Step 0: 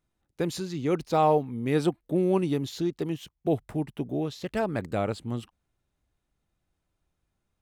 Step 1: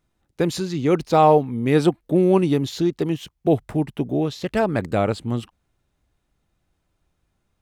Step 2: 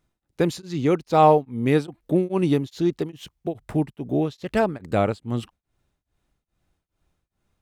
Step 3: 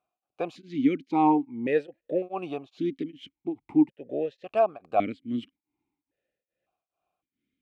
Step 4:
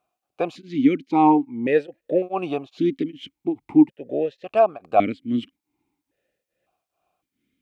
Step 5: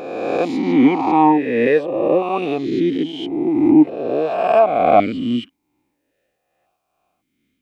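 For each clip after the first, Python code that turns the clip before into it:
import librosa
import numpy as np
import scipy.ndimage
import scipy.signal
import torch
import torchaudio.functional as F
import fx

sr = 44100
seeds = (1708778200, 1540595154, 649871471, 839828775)

y1 = fx.high_shelf(x, sr, hz=8700.0, db=-4.0)
y1 = y1 * 10.0 ** (7.5 / 20.0)
y2 = y1 * np.abs(np.cos(np.pi * 2.4 * np.arange(len(y1)) / sr))
y3 = fx.vowel_held(y2, sr, hz=1.8)
y3 = y3 * 10.0 ** (6.0 / 20.0)
y4 = fx.rider(y3, sr, range_db=3, speed_s=2.0)
y4 = y4 * 10.0 ** (5.5 / 20.0)
y5 = fx.spec_swells(y4, sr, rise_s=1.59)
y5 = y5 * 10.0 ** (2.0 / 20.0)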